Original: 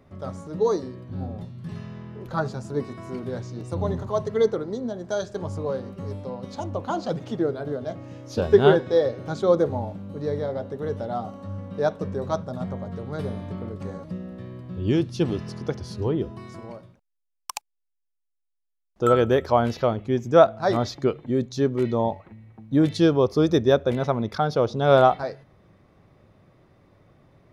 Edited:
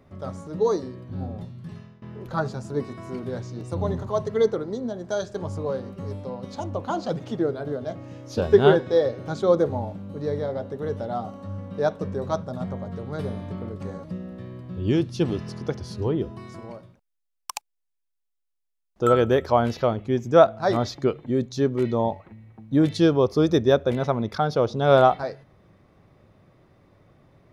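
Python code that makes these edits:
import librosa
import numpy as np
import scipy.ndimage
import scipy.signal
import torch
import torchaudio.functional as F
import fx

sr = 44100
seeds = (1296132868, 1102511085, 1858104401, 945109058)

y = fx.edit(x, sr, fx.fade_out_to(start_s=1.51, length_s=0.51, floor_db=-19.5), tone=tone)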